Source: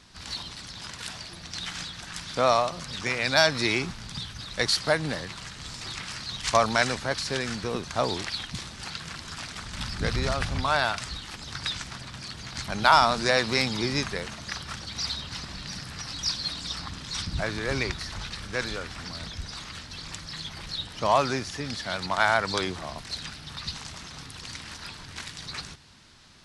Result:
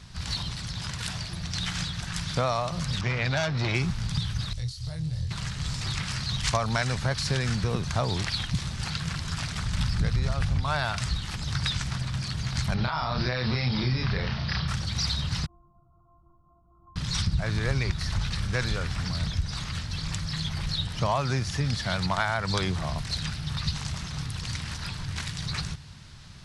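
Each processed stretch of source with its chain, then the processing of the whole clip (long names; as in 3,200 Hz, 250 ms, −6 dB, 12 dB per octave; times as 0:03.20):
0:03.01–0:03.75: high-frequency loss of the air 140 metres + saturating transformer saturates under 2,200 Hz
0:04.53–0:05.31: drawn EQ curve 120 Hz 0 dB, 200 Hz −21 dB, 430 Hz −18 dB, 1,600 Hz −23 dB, 4,500 Hz −9 dB + downward compressor 12 to 1, threshold −41 dBFS + double-tracking delay 25 ms −3 dB
0:12.74–0:14.68: Butterworth low-pass 5,400 Hz 72 dB per octave + downward compressor 12 to 1, threshold −27 dBFS + double-tracking delay 32 ms −2.5 dB
0:15.46–0:16.96: linear-phase brick-wall low-pass 1,400 Hz + stiff-string resonator 340 Hz, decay 0.61 s, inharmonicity 0.008
whole clip: low shelf with overshoot 200 Hz +9.5 dB, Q 1.5; downward compressor 5 to 1, threshold −25 dBFS; level +2.5 dB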